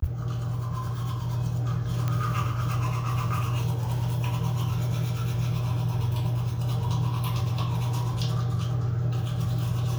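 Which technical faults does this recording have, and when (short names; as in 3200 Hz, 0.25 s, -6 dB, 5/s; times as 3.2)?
2.08 pop -15 dBFS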